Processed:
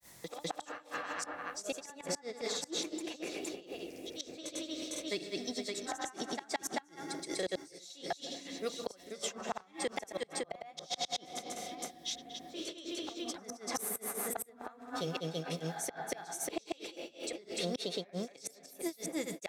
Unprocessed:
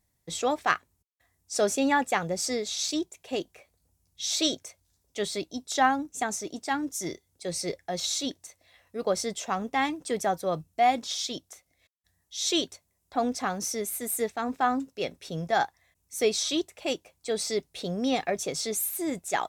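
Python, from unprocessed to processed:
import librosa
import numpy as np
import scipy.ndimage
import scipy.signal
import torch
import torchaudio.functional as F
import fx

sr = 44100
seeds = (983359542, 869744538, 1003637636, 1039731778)

y = fx.rider(x, sr, range_db=5, speed_s=2.0)
y = fx.low_shelf(y, sr, hz=270.0, db=-10.5)
y = fx.echo_filtered(y, sr, ms=492, feedback_pct=26, hz=3300.0, wet_db=-21.5)
y = fx.room_shoebox(y, sr, seeds[0], volume_m3=3800.0, walls='mixed', distance_m=0.77)
y = fx.gate_flip(y, sr, shuts_db=-21.0, range_db=-32)
y = fx.granulator(y, sr, seeds[1], grain_ms=169.0, per_s=17.0, spray_ms=336.0, spread_st=0)
y = fx.band_squash(y, sr, depth_pct=70)
y = y * librosa.db_to_amplitude(4.0)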